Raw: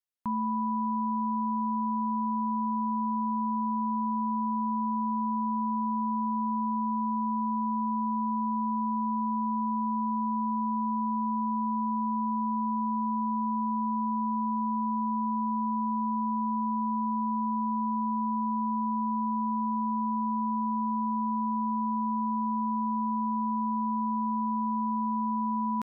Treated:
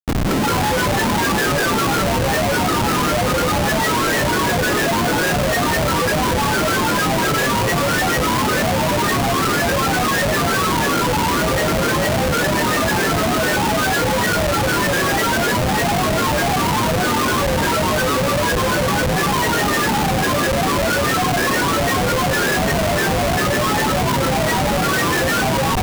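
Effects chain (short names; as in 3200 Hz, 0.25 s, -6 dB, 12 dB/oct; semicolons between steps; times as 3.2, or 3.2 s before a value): on a send: flutter echo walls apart 7.3 m, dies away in 1.2 s; on the sum: band noise 70–380 Hz -35 dBFS; Schroeder reverb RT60 3.1 s, combs from 27 ms, DRR -7.5 dB; in parallel at +3 dB: limiter -18.5 dBFS, peak gain reduction 7 dB; on the sum: grains 0.1 s, grains 20/s, pitch spread up and down by 12 st; Schmitt trigger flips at -23 dBFS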